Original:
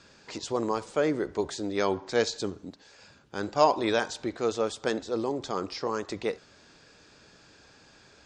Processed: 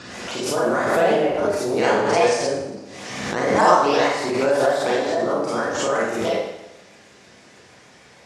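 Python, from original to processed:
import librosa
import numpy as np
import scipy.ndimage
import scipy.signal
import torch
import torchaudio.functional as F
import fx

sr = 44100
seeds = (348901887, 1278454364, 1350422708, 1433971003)

y = fx.pitch_ramps(x, sr, semitones=7.5, every_ms=157)
y = scipy.signal.sosfilt(scipy.signal.butter(2, 71.0, 'highpass', fs=sr, output='sos'), y)
y = fx.high_shelf(y, sr, hz=5700.0, db=-9.0)
y = fx.rev_schroeder(y, sr, rt60_s=0.86, comb_ms=31, drr_db=-9.5)
y = fx.pre_swell(y, sr, db_per_s=34.0)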